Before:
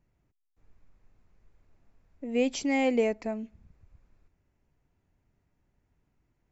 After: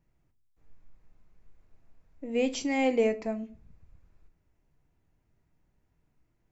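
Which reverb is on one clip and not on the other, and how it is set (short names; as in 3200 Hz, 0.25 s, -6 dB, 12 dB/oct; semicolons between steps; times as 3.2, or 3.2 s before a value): shoebox room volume 210 m³, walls furnished, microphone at 0.61 m; gain -1 dB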